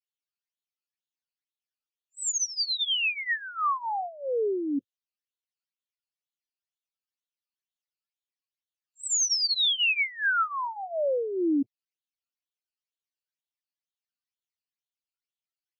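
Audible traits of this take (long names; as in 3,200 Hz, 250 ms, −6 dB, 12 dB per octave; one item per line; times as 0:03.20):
phaser sweep stages 12, 2.1 Hz, lowest notch 600–1,900 Hz
Ogg Vorbis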